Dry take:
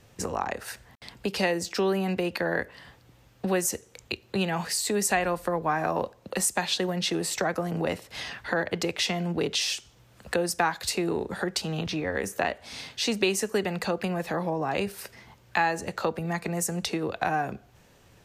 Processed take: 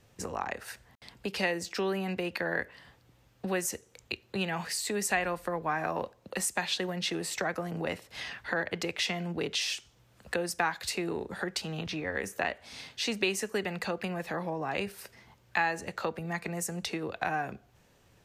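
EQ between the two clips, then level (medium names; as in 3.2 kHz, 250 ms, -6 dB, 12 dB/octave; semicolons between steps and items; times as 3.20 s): dynamic bell 2.1 kHz, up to +5 dB, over -41 dBFS, Q 1; -6.0 dB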